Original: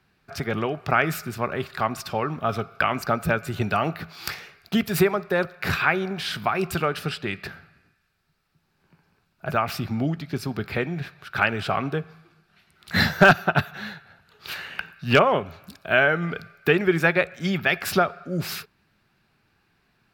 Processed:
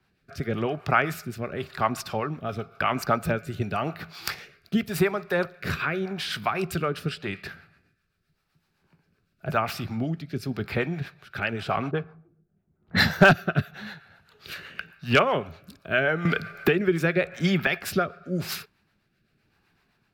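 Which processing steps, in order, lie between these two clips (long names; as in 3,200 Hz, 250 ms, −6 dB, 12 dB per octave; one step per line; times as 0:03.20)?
rotating-speaker cabinet horn 0.9 Hz
two-band tremolo in antiphase 7.8 Hz, depth 50%, crossover 510 Hz
0:11.91–0:13.09: low-pass that shuts in the quiet parts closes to 390 Hz, open at −21 dBFS
0:16.25–0:17.67: multiband upward and downward compressor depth 100%
level +2 dB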